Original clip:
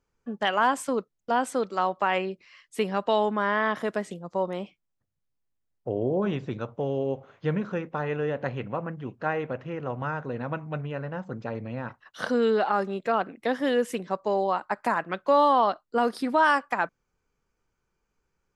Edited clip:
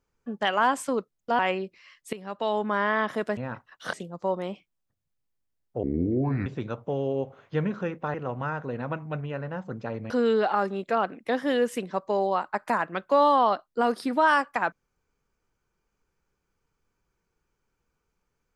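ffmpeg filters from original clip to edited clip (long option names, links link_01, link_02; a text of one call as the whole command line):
ffmpeg -i in.wav -filter_complex "[0:a]asplit=9[link_01][link_02][link_03][link_04][link_05][link_06][link_07][link_08][link_09];[link_01]atrim=end=1.392[link_10];[link_02]atrim=start=2.058:end=2.8,asetpts=PTS-STARTPTS,afade=type=out:start_time=0.738:duration=0.004:curve=hsin:silence=0.149624[link_11];[link_03]atrim=start=2.8:end=4.042,asetpts=PTS-STARTPTS,afade=type=in:duration=0.61:silence=0.149624[link_12];[link_04]atrim=start=11.708:end=12.272[link_13];[link_05]atrim=start=4.038:end=5.944[link_14];[link_06]atrim=start=5.94:end=6.37,asetpts=PTS-STARTPTS,asetrate=29988,aresample=44100[link_15];[link_07]atrim=start=6.366:end=8.052[link_16];[link_08]atrim=start=9.748:end=11.712[link_17];[link_09]atrim=start=12.268[link_18];[link_11][link_12]concat=n=2:v=0:a=1[link_19];[link_10][link_19]acrossfade=duration=0.004:curve1=hsin:curve2=hsin[link_20];[link_20][link_13]acrossfade=duration=0.004:curve1=hsin:curve2=hsin[link_21];[link_21][link_14]acrossfade=duration=0.004:curve1=hsin:curve2=hsin[link_22];[link_22][link_15]acrossfade=duration=0.004:curve1=hsin:curve2=hsin[link_23];[link_23][link_16]acrossfade=duration=0.004:curve1=hsin:curve2=hsin[link_24];[link_24][link_17]acrossfade=duration=0.004:curve1=hsin:curve2=hsin[link_25];[link_25][link_18]acrossfade=duration=0.004:curve1=hsin:curve2=hsin" out.wav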